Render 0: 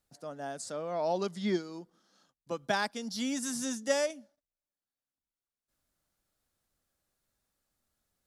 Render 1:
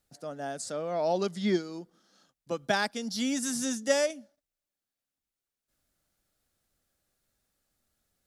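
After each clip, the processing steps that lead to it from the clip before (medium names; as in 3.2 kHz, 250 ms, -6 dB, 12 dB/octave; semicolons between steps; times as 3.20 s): peaking EQ 1 kHz -5 dB 0.4 oct; trim +3.5 dB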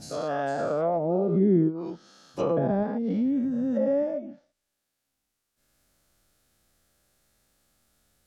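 every event in the spectrogram widened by 240 ms; low-pass that closes with the level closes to 370 Hz, closed at -22 dBFS; trim +4 dB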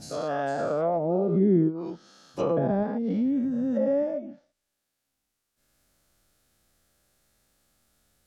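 no audible change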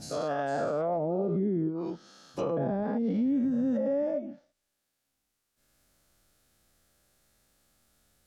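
peak limiter -22 dBFS, peak gain reduction 9.5 dB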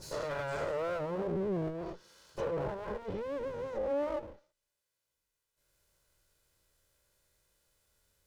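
comb filter that takes the minimum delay 2 ms; trim -3.5 dB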